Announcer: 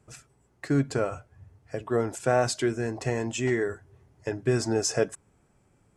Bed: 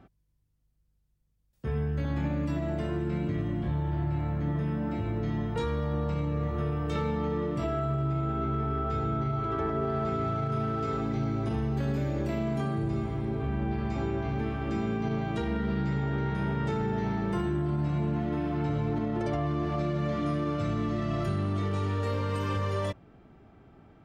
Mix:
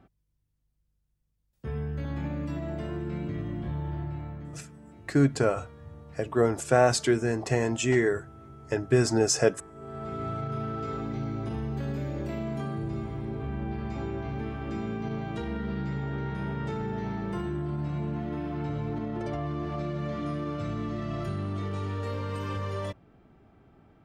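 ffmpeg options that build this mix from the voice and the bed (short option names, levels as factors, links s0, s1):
-filter_complex "[0:a]adelay=4450,volume=1.33[s0];[1:a]volume=4.47,afade=t=out:st=3.89:d=0.79:silence=0.158489,afade=t=in:st=9.74:d=0.55:silence=0.158489[s1];[s0][s1]amix=inputs=2:normalize=0"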